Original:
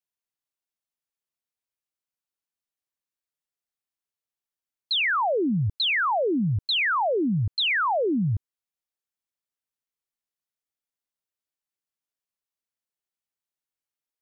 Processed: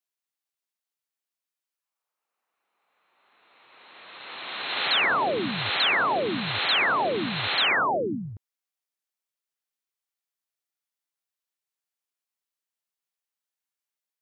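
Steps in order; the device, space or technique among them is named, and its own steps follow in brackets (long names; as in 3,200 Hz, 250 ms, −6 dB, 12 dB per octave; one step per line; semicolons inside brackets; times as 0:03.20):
ghost voice (reversed playback; convolution reverb RT60 2.7 s, pre-delay 37 ms, DRR 2 dB; reversed playback; high-pass filter 580 Hz 6 dB per octave)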